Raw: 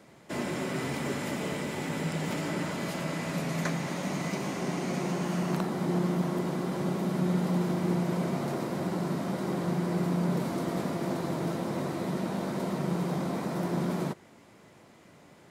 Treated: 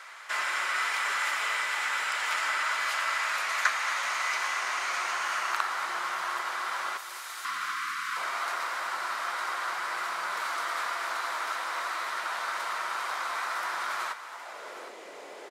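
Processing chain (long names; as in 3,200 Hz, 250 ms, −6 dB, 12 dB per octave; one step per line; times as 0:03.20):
meter weighting curve A
0:07.42–0:08.17: gain on a spectral selection 330–1,000 Hz −27 dB
0:06.97–0:07.45: first difference
in parallel at +2 dB: downward compressor, threshold −53 dBFS, peak gain reduction 22.5 dB
on the sum: high-pass filter sweep 1,300 Hz → 430 Hz, 0:14.12–0:14.75
on a send: multi-tap delay 228/766 ms −14.5/−13 dB
on the sum: level +4 dB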